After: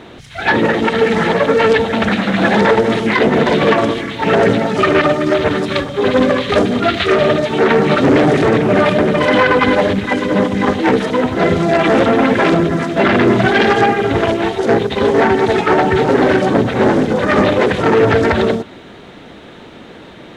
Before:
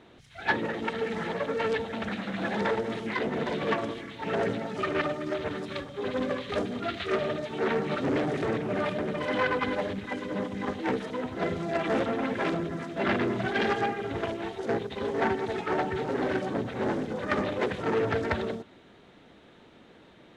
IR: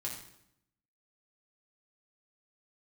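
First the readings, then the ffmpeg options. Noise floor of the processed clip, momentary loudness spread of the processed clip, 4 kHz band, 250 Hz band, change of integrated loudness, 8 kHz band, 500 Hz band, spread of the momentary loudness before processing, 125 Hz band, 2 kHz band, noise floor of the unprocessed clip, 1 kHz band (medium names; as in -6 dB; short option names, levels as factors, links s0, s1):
-37 dBFS, 4 LU, +17.0 dB, +17.0 dB, +17.0 dB, no reading, +17.0 dB, 6 LU, +17.0 dB, +16.0 dB, -55 dBFS, +16.5 dB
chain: -af "alimiter=level_in=8.91:limit=0.891:release=50:level=0:latency=1,volume=0.891"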